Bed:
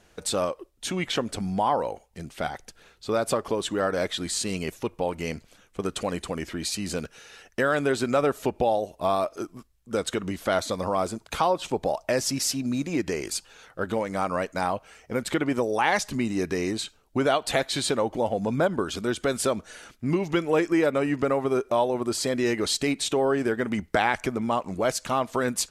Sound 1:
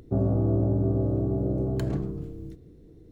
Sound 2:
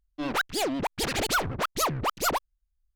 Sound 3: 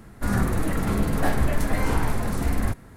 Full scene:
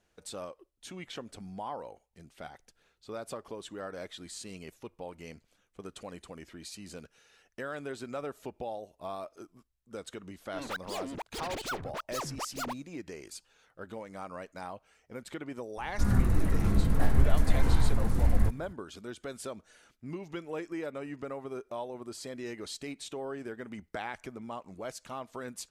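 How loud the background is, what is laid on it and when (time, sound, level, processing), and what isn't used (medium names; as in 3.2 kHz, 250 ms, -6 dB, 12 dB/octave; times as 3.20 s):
bed -15 dB
10.35 s: add 2 -10.5 dB + median filter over 3 samples
15.77 s: add 3 -10 dB + bass shelf 160 Hz +12 dB
not used: 1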